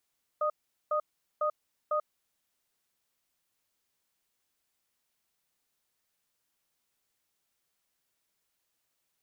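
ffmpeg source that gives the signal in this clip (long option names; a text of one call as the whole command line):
ffmpeg -f lavfi -i "aevalsrc='0.0376*(sin(2*PI*604*t)+sin(2*PI*1240*t))*clip(min(mod(t,0.5),0.09-mod(t,0.5))/0.005,0,1)':duration=1.76:sample_rate=44100" out.wav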